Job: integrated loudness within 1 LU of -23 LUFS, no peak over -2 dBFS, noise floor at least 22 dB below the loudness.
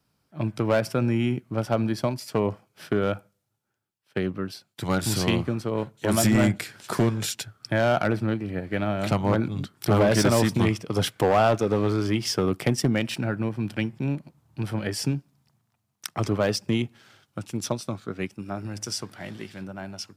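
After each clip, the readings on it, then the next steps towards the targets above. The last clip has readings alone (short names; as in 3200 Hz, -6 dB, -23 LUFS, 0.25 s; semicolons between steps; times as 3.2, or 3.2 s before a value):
clipped 0.8%; flat tops at -14.0 dBFS; loudness -26.0 LUFS; peak -14.0 dBFS; loudness target -23.0 LUFS
-> clip repair -14 dBFS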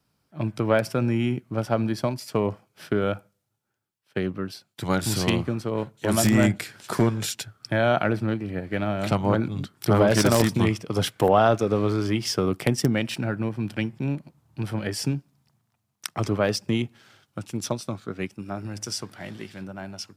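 clipped 0.0%; loudness -25.5 LUFS; peak -5.0 dBFS; loudness target -23.0 LUFS
-> gain +2.5 dB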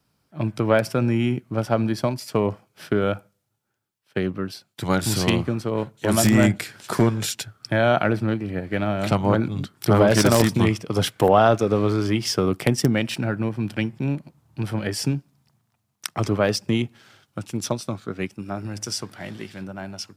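loudness -23.0 LUFS; peak -2.5 dBFS; noise floor -73 dBFS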